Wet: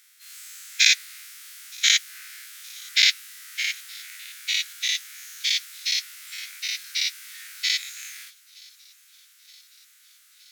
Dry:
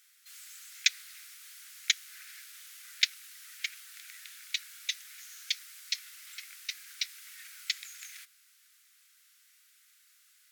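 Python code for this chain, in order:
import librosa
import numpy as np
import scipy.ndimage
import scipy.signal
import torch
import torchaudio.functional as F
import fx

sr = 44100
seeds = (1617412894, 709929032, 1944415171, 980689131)

y = fx.spec_dilate(x, sr, span_ms=120)
y = fx.echo_wet_highpass(y, sr, ms=920, feedback_pct=68, hz=3400.0, wet_db=-23)
y = y * 10.0 ** (2.0 / 20.0)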